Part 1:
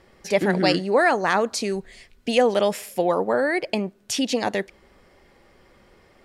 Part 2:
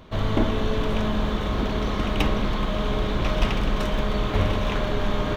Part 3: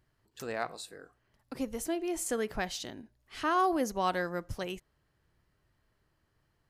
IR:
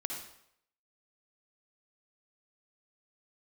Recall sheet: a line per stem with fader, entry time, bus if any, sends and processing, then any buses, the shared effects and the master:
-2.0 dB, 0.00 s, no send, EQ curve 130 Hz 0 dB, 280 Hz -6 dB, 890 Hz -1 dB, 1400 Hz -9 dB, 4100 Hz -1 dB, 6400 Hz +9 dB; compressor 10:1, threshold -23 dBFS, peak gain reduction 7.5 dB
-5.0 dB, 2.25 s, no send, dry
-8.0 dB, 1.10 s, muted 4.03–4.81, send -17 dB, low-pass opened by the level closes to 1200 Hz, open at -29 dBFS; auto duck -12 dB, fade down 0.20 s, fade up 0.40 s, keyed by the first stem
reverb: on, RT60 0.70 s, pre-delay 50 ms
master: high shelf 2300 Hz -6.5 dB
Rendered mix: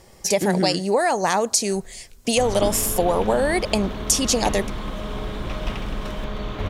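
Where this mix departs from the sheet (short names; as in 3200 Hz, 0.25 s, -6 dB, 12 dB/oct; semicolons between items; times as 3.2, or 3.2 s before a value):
stem 1 -2.0 dB -> +7.5 dB; master: missing high shelf 2300 Hz -6.5 dB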